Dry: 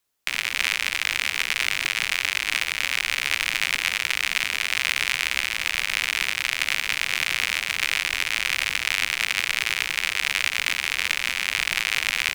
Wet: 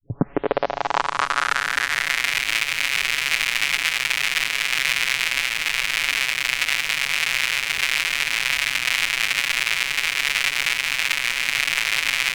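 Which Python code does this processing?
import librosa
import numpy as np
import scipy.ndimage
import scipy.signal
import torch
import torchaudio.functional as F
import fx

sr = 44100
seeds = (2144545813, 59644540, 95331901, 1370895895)

y = fx.tape_start_head(x, sr, length_s=2.42)
y = y + 0.93 * np.pad(y, (int(7.1 * sr / 1000.0), 0))[:len(y)]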